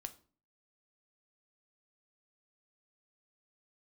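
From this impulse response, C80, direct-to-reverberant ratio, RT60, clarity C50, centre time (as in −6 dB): 21.5 dB, 8.0 dB, 0.40 s, 16.5 dB, 5 ms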